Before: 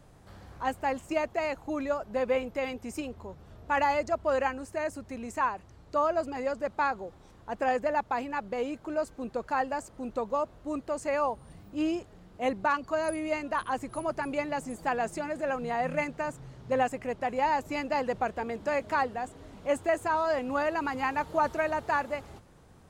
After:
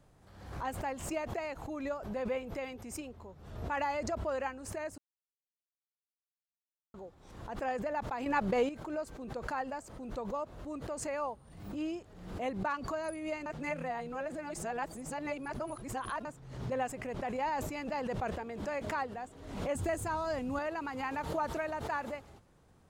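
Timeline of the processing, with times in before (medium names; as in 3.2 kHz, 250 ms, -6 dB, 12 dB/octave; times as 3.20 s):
4.98–6.94 s: mute
8.26–8.69 s: gain +10 dB
13.46–16.25 s: reverse
17.11–18.38 s: decay stretcher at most 44 dB/s
19.75–20.59 s: tone controls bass +13 dB, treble +7 dB
whole clip: swell ahead of each attack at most 64 dB/s; trim -8 dB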